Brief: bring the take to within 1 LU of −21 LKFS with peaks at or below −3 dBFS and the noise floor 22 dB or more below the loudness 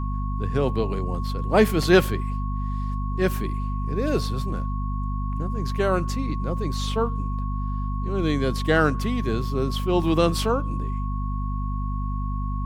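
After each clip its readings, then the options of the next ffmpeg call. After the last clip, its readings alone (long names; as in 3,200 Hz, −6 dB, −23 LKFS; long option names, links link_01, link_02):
mains hum 50 Hz; hum harmonics up to 250 Hz; level of the hum −24 dBFS; interfering tone 1,100 Hz; level of the tone −35 dBFS; integrated loudness −25.0 LKFS; sample peak −2.5 dBFS; target loudness −21.0 LKFS
→ -af "bandreject=frequency=50:width_type=h:width=6,bandreject=frequency=100:width_type=h:width=6,bandreject=frequency=150:width_type=h:width=6,bandreject=frequency=200:width_type=h:width=6,bandreject=frequency=250:width_type=h:width=6"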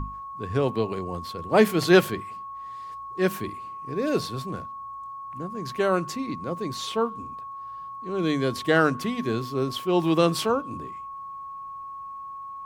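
mains hum none found; interfering tone 1,100 Hz; level of the tone −35 dBFS
→ -af "bandreject=frequency=1100:width=30"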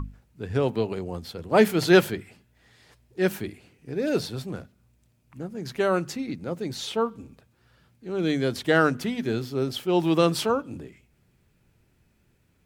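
interfering tone none found; integrated loudness −25.5 LKFS; sample peak −3.5 dBFS; target loudness −21.0 LKFS
→ -af "volume=4.5dB,alimiter=limit=-3dB:level=0:latency=1"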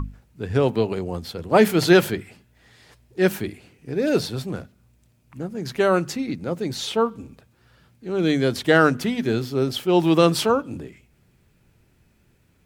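integrated loudness −21.5 LKFS; sample peak −3.0 dBFS; background noise floor −61 dBFS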